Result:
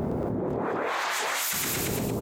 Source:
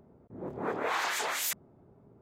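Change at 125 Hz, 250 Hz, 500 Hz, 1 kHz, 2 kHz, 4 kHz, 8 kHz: +17.0, +12.5, +8.0, +4.0, +4.0, +5.5, +6.5 decibels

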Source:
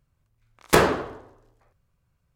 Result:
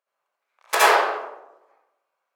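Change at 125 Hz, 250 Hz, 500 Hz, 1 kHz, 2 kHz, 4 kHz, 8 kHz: below −35 dB, −13.5 dB, −0.5 dB, +6.5 dB, +5.5 dB, +4.5 dB, +3.5 dB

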